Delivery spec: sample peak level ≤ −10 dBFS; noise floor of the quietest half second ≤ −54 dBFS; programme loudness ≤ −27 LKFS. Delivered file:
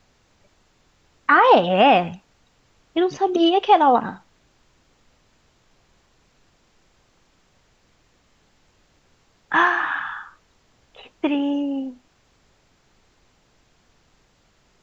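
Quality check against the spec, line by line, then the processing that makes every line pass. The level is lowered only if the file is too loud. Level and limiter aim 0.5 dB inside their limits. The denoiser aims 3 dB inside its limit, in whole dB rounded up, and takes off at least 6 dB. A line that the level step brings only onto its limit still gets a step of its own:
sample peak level −4.0 dBFS: out of spec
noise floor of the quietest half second −61 dBFS: in spec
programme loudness −18.5 LKFS: out of spec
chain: level −9 dB

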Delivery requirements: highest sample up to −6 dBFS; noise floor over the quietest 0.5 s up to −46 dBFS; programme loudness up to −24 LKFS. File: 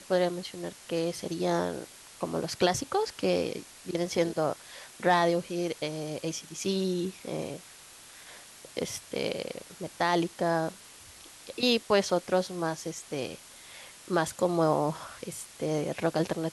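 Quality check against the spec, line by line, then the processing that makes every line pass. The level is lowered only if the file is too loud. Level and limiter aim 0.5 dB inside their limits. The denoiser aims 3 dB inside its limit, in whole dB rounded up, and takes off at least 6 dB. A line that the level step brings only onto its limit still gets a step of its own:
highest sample −11.5 dBFS: in spec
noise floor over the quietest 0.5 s −51 dBFS: in spec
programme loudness −30.5 LKFS: in spec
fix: no processing needed

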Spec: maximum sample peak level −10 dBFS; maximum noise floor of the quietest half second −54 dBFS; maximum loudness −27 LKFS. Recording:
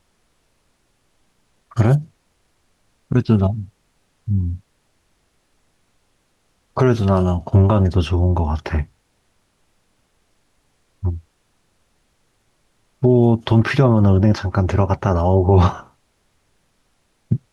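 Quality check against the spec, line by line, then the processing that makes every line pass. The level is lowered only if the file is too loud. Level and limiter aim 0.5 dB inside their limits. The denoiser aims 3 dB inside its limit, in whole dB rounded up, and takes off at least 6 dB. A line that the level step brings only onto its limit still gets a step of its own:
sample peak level −3.5 dBFS: out of spec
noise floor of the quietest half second −64 dBFS: in spec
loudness −18.0 LKFS: out of spec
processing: level −9.5 dB

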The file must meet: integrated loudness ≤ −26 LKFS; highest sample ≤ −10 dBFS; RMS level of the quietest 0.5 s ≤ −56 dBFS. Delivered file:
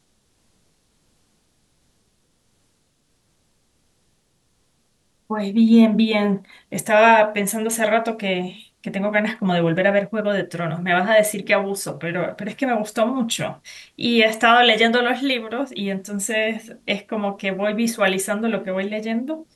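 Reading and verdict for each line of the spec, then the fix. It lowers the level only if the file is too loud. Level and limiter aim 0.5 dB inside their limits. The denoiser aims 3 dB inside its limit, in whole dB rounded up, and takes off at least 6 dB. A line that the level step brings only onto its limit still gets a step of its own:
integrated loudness −20.0 LKFS: out of spec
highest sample −4.0 dBFS: out of spec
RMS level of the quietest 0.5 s −65 dBFS: in spec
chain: level −6.5 dB

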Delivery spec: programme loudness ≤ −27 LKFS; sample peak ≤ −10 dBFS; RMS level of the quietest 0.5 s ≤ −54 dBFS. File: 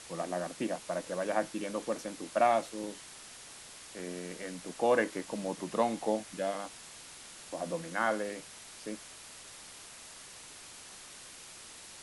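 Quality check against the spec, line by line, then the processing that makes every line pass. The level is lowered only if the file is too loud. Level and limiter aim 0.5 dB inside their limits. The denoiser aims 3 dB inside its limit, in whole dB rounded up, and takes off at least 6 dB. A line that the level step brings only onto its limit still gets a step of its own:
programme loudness −34.5 LKFS: in spec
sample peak −14.5 dBFS: in spec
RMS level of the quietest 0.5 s −50 dBFS: out of spec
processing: broadband denoise 7 dB, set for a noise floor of −50 dBFS

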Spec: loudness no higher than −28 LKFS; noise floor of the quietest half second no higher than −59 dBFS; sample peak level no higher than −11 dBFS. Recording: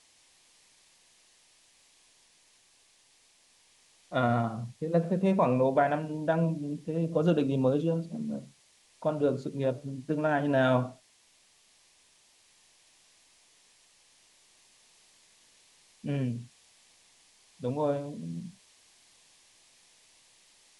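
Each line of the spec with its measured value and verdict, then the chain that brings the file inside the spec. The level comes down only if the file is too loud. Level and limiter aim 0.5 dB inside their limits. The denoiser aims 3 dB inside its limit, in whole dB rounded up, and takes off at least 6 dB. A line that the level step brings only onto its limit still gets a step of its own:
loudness −29.5 LKFS: in spec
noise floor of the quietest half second −64 dBFS: in spec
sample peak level −12.5 dBFS: in spec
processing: no processing needed

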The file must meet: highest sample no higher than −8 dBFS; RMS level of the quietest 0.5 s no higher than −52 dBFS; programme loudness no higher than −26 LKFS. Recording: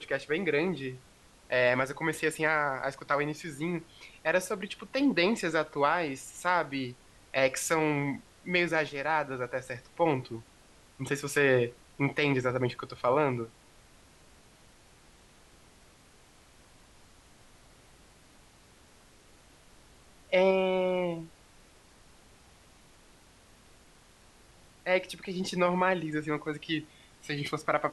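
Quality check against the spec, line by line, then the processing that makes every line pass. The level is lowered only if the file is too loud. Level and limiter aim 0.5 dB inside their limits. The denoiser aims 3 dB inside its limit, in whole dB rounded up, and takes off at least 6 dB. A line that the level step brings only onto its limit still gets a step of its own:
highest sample −12.0 dBFS: in spec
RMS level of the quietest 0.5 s −58 dBFS: in spec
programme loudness −30.0 LKFS: in spec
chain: no processing needed

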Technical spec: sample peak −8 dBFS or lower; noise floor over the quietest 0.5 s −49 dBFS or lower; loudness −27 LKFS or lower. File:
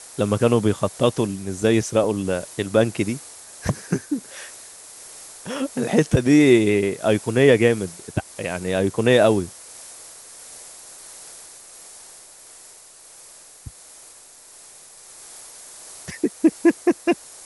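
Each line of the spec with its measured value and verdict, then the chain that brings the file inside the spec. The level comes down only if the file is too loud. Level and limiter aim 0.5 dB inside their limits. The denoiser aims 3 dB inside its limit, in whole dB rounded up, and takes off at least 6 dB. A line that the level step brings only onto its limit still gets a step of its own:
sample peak −3.0 dBFS: out of spec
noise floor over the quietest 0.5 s −46 dBFS: out of spec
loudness −20.5 LKFS: out of spec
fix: level −7 dB

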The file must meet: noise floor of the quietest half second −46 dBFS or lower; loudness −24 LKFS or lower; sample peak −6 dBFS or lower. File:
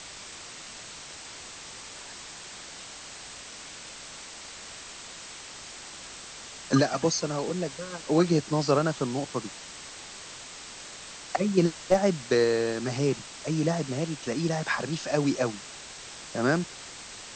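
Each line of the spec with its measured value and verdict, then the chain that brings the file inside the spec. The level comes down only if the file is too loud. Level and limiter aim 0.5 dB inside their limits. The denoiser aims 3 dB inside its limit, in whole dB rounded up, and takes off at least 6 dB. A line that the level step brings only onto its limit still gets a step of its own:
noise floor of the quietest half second −43 dBFS: out of spec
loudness −27.5 LKFS: in spec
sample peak −9.0 dBFS: in spec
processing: broadband denoise 6 dB, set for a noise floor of −43 dBFS

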